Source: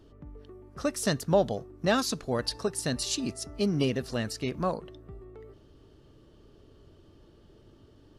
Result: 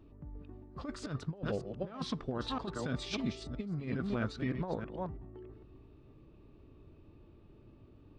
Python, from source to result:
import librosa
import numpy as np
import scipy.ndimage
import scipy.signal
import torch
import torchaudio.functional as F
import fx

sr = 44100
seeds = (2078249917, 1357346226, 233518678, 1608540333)

y = fx.reverse_delay(x, sr, ms=323, wet_db=-9)
y = fx.spacing_loss(y, sr, db_at_10k=21)
y = fx.formant_shift(y, sr, semitones=-3)
y = fx.dynamic_eq(y, sr, hz=1200.0, q=0.86, threshold_db=-46.0, ratio=4.0, max_db=6)
y = fx.over_compress(y, sr, threshold_db=-30.0, ratio=-0.5)
y = y * librosa.db_to_amplitude(-4.5)